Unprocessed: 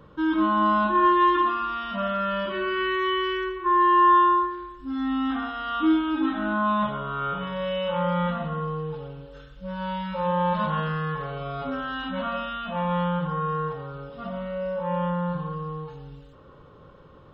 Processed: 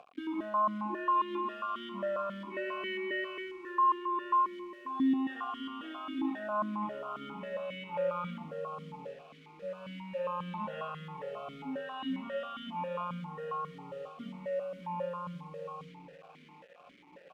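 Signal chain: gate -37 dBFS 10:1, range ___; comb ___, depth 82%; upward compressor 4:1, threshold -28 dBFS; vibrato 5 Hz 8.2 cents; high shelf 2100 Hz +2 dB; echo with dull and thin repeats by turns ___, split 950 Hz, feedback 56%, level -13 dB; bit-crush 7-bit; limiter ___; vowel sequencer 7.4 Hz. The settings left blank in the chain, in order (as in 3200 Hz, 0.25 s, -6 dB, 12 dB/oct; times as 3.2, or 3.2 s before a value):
-51 dB, 4.9 ms, 0.741 s, -12 dBFS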